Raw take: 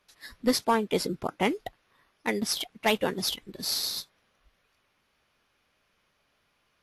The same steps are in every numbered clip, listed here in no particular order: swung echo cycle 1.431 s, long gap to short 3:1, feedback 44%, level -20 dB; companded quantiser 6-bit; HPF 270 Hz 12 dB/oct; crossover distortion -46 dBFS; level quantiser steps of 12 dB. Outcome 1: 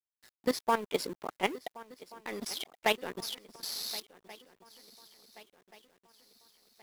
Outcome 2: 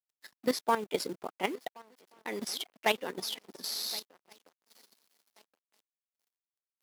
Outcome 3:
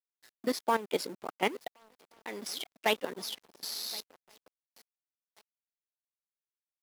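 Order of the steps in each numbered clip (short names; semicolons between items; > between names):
HPF > level quantiser > crossover distortion > swung echo > companded quantiser; swung echo > crossover distortion > companded quantiser > HPF > level quantiser; swung echo > level quantiser > crossover distortion > HPF > companded quantiser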